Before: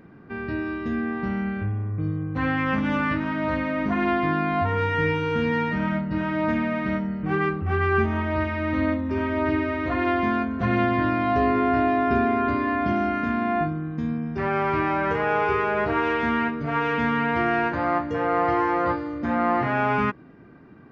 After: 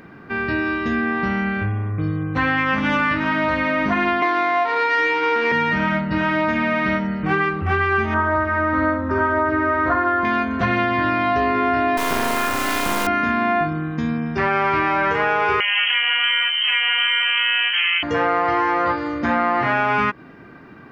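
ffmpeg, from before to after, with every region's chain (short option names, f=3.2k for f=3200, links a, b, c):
-filter_complex "[0:a]asettb=1/sr,asplit=3[a][b][c];[a]atrim=end=4.224[d];[b]atrim=start=4.22:end=5.52,asetpts=PTS-STARTPTS,afade=t=in:d=0.004:c=qsin,afade=t=out:st=1.296:d=0.004:c=qsin,adynamicsmooth=sensitivity=3.5:basefreq=710,highpass=f=300:w=0.5412,highpass=f=300:w=1.3066,equalizer=f=370:t=q:w=4:g=6,equalizer=f=740:t=q:w=4:g=7,equalizer=f=1.1k:t=q:w=4:g=5,equalizer=f=2.1k:t=q:w=4:g=8,lowpass=f=4.3k:w=0.5412,lowpass=f=4.3k:w=1.3066[e];[c]atrim=start=5.516[f];[d][e]acrossfade=d=0.004:c1=hsin:c2=qsin[g];[g][f]acrossfade=d=0.004:c1=qsin:c2=hsin,asettb=1/sr,asplit=3[h][i][j];[h]atrim=end=8.144[k];[i]atrim=start=8.14:end=10.25,asetpts=PTS-STARTPTS,afade=t=in:d=0.004:c=qsin,afade=t=out:st=2.106:d=0.004:c=qsin,highshelf=f=1.9k:t=q:w=3:g=-9,asplit=2[l][m];[m]adelay=48,volume=-10.5dB[n];[l][n]amix=inputs=2:normalize=0,atrim=end_sample=93051[o];[j]atrim=start=10.246[p];[k][o]acrossfade=d=0.004:c1=hsin:c2=qsin[q];[q][p]acrossfade=d=0.004:c1=qsin:c2=hsin,asettb=1/sr,asplit=3[r][s][t];[r]atrim=end=11.974[u];[s]atrim=start=11.97:end=13.07,asetpts=PTS-STARTPTS,afade=t=in:d=0.004:c=qsin,afade=t=out:st=1.096:d=0.004:c=qsin,aeval=exprs='max(val(0),0)':c=same,acrusher=bits=3:dc=4:mix=0:aa=0.000001[v];[t]atrim=start=13.066[w];[u][v]acrossfade=d=0.004:c1=hsin:c2=qsin[x];[x][w]acrossfade=d=0.004:c1=qsin:c2=hsin,asettb=1/sr,asplit=3[y][z][aa];[y]atrim=end=15.604[ab];[z]atrim=start=15.6:end=18.03,asetpts=PTS-STARTPTS,afade=t=in:d=0.004:c=qsin,afade=t=out:st=2.426:d=0.004:c=qsin,acrossover=split=240|570|1200|2500[ac][ad][ae][af][ag];[ac]acompressor=threshold=-35dB:ratio=3[ah];[ad]acompressor=threshold=-38dB:ratio=3[ai];[ae]acompressor=threshold=-36dB:ratio=3[aj];[af]acompressor=threshold=-31dB:ratio=3[ak];[ag]acompressor=threshold=-53dB:ratio=3[al];[ah][ai][aj][ak][al]amix=inputs=5:normalize=0,lowpass=f=2.8k:t=q:w=0.5098,lowpass=f=2.8k:t=q:w=0.6013,lowpass=f=2.8k:t=q:w=0.9,lowpass=f=2.8k:t=q:w=2.563,afreqshift=-3300[am];[aa]atrim=start=18.026[an];[ab][am]acrossfade=d=0.004:c1=hsin:c2=qsin[ao];[ao][an]acrossfade=d=0.004:c1=qsin:c2=hsin,tiltshelf=f=710:g=-5,acompressor=threshold=-24dB:ratio=6,volume=8.5dB"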